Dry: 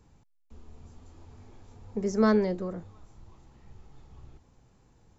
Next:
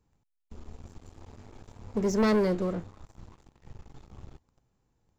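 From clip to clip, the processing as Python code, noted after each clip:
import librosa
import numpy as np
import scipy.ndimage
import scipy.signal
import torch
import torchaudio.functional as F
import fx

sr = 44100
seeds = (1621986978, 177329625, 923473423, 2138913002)

y = fx.leveller(x, sr, passes=3)
y = y * librosa.db_to_amplitude(-6.5)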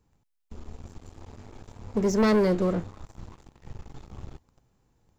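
y = fx.rider(x, sr, range_db=10, speed_s=0.5)
y = y * librosa.db_to_amplitude(5.0)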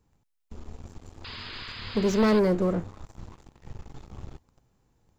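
y = fx.dynamic_eq(x, sr, hz=4100.0, q=0.78, threshold_db=-49.0, ratio=4.0, max_db=-4)
y = fx.spec_paint(y, sr, seeds[0], shape='noise', start_s=1.24, length_s=1.16, low_hz=920.0, high_hz=5100.0, level_db=-41.0)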